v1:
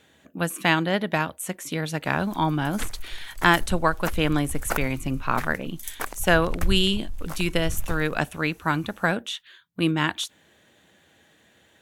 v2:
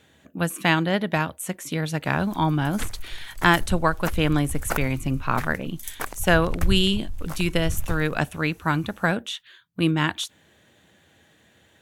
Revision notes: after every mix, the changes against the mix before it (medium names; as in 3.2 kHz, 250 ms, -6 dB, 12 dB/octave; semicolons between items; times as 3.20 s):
master: add peaking EQ 98 Hz +5.5 dB 1.6 oct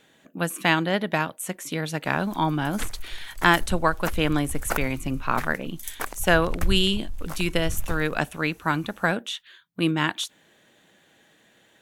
speech: add peaking EQ 78 Hz -14.5 dB 0.51 oct; master: add peaking EQ 98 Hz -5.5 dB 1.6 oct